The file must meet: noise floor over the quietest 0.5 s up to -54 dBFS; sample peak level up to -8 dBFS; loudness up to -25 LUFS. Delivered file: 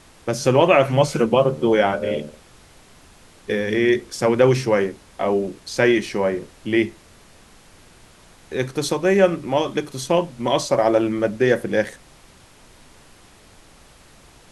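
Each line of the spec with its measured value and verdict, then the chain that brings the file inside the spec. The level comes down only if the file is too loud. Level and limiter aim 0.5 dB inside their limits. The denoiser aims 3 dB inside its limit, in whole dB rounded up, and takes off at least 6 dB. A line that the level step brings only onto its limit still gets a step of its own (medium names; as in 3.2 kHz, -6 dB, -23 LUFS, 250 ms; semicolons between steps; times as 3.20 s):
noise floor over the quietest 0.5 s -49 dBFS: fail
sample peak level -3.0 dBFS: fail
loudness -20.0 LUFS: fail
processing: trim -5.5 dB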